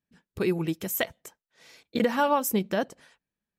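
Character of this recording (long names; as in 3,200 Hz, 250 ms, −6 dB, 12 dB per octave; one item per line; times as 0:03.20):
background noise floor −92 dBFS
spectral slope −4.5 dB per octave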